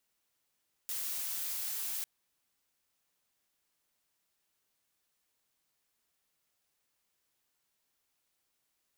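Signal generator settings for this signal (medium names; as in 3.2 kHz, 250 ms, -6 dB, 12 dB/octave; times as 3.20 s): noise blue, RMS -37 dBFS 1.15 s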